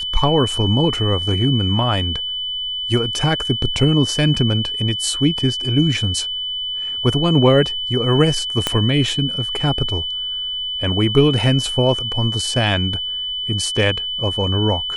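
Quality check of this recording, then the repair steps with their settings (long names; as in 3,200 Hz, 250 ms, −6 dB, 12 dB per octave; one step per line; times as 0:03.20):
whistle 3,000 Hz −22 dBFS
0:08.67: click −3 dBFS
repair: click removal
notch filter 3,000 Hz, Q 30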